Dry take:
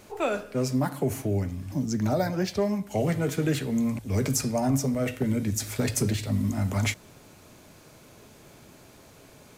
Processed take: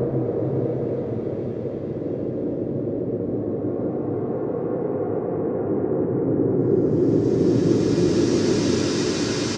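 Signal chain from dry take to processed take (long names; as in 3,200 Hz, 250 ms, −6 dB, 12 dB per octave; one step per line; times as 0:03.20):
cochlear-implant simulation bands 3
single-tap delay 140 ms −7.5 dB
auto-filter low-pass saw down 0.42 Hz 370–5,800 Hz
extreme stretch with random phases 19×, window 0.25 s, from 0:04.31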